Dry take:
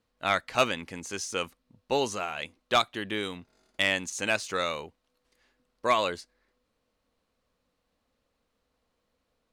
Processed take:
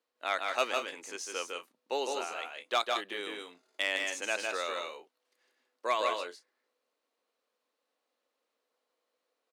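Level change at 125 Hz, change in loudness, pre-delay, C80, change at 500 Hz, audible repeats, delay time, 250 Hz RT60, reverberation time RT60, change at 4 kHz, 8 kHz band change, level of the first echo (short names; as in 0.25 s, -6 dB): under -25 dB, -4.5 dB, none, none, -4.5 dB, 2, 0.155 s, none, none, -4.0 dB, -4.0 dB, -3.5 dB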